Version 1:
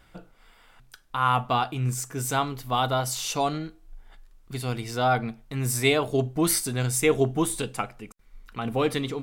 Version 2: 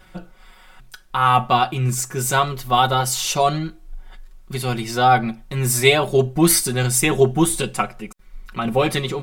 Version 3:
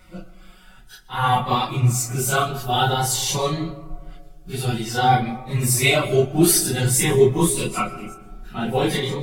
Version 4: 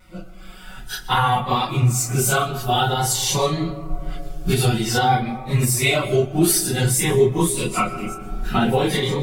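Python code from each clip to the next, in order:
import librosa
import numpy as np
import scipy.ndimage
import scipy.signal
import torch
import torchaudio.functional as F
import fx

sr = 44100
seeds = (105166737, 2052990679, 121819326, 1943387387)

y1 = x + 0.86 * np.pad(x, (int(5.4 * sr / 1000.0), 0))[:len(x)]
y1 = y1 * 10.0 ** (5.5 / 20.0)
y2 = fx.phase_scramble(y1, sr, seeds[0], window_ms=100)
y2 = fx.rev_freeverb(y2, sr, rt60_s=1.7, hf_ratio=0.3, predelay_ms=85, drr_db=15.0)
y2 = fx.notch_cascade(y2, sr, direction='rising', hz=0.52)
y3 = fx.recorder_agc(y2, sr, target_db=-8.0, rise_db_per_s=16.0, max_gain_db=30)
y3 = fx.vibrato(y3, sr, rate_hz=0.61, depth_cents=12.0)
y3 = y3 * 10.0 ** (-1.5 / 20.0)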